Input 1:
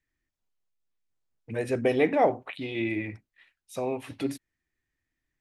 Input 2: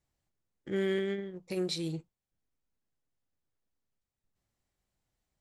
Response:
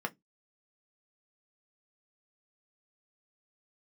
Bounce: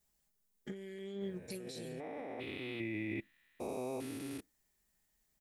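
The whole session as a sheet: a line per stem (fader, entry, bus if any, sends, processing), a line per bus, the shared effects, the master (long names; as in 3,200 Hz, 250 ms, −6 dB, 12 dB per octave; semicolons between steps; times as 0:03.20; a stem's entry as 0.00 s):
0:01.26 −18 dB → 0:01.58 −8.5 dB, 0.00 s, send −20 dB, spectrum averaged block by block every 400 ms
−7.5 dB, 0.00 s, no send, high-shelf EQ 4,100 Hz +5.5 dB; comb filter 4.8 ms, depth 87%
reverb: on, RT60 0.15 s, pre-delay 3 ms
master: high-shelf EQ 8,300 Hz +11.5 dB; compressor whose output falls as the input rises −42 dBFS, ratio −1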